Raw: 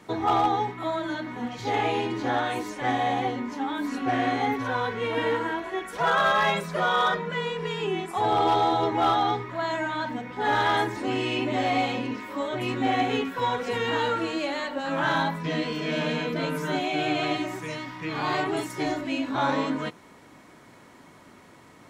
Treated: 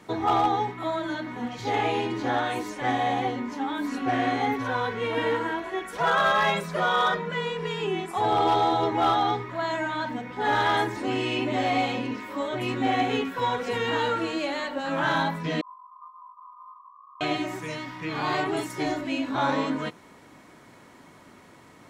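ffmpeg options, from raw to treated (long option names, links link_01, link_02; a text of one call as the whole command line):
ffmpeg -i in.wav -filter_complex "[0:a]asettb=1/sr,asplit=3[link_01][link_02][link_03];[link_01]atrim=end=15.614[link_04];[link_02]atrim=start=15.61:end=17.21,asetpts=PTS-STARTPTS,afade=type=in:duration=0.004:curve=qsin,afade=type=out:start_time=1.596:duration=0.004:curve=qsin,asuperpass=centerf=1100:order=12:qfactor=5[link_05];[link_03]atrim=start=17.206[link_06];[link_04][link_05]acrossfade=duration=0.004:curve1=hsin:curve2=qsin[link_07];[link_07][link_06]acrossfade=duration=0.004:curve1=qsin:curve2=hsin" out.wav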